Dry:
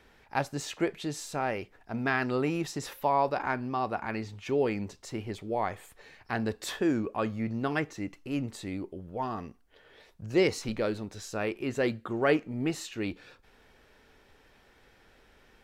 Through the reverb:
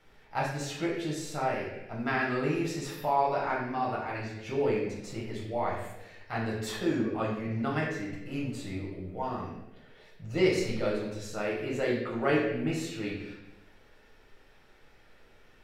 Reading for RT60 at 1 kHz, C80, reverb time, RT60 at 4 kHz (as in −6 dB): 0.80 s, 5.5 dB, 0.95 s, 0.85 s